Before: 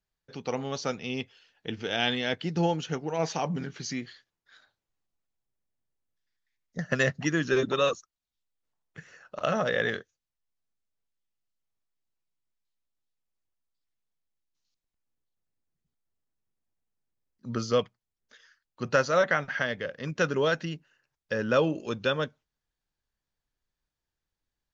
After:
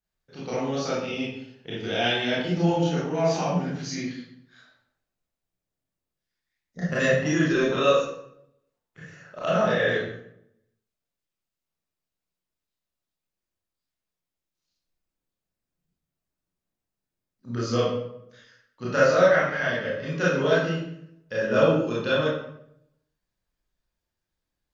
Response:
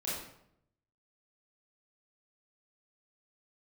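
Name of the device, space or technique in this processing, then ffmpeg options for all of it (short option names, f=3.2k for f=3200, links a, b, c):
bathroom: -filter_complex "[1:a]atrim=start_sample=2205[a];[0:a][a]afir=irnorm=-1:irlink=0"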